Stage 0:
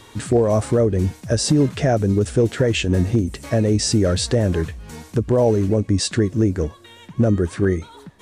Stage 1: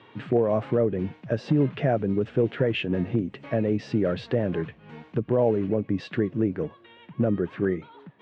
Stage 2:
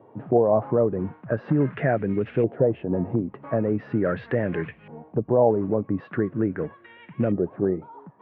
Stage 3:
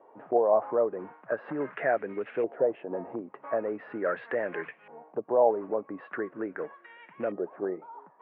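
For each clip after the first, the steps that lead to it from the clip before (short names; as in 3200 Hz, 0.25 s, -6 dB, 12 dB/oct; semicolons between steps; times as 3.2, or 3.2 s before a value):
elliptic band-pass 130–2900 Hz, stop band 80 dB; gain -5 dB
LFO low-pass saw up 0.41 Hz 640–2500 Hz
BPF 570–2300 Hz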